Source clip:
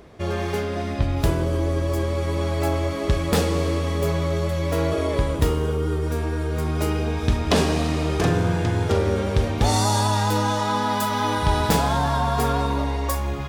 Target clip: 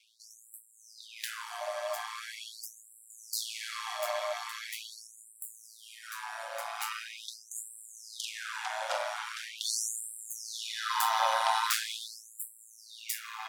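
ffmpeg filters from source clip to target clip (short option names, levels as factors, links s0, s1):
-af "aeval=exprs='val(0)*sin(2*PI*56*n/s)':c=same,afftfilt=real='re*gte(b*sr/1024,530*pow(7500/530,0.5+0.5*sin(2*PI*0.42*pts/sr)))':imag='im*gte(b*sr/1024,530*pow(7500/530,0.5+0.5*sin(2*PI*0.42*pts/sr)))':win_size=1024:overlap=0.75"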